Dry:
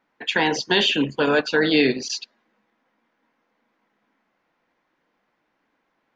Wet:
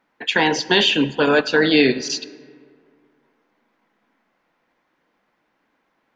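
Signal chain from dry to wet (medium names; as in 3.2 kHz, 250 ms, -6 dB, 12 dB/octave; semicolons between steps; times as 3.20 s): algorithmic reverb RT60 2.2 s, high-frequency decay 0.5×, pre-delay 25 ms, DRR 18 dB; trim +3 dB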